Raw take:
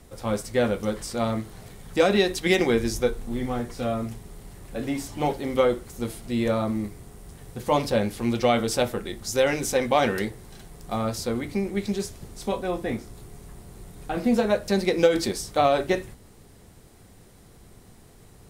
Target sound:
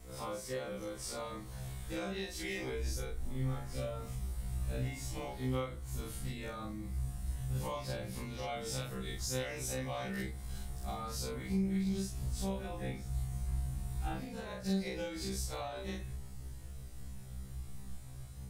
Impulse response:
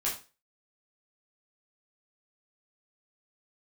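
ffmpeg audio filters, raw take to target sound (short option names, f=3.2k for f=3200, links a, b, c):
-af "afftfilt=real='re':imag='-im':win_size=4096:overlap=0.75,highshelf=f=4k:g=4,acompressor=threshold=-36dB:ratio=5,asubboost=boost=6:cutoff=130,afftfilt=real='re*1.73*eq(mod(b,3),0)':imag='im*1.73*eq(mod(b,3),0)':win_size=2048:overlap=0.75,volume=1.5dB"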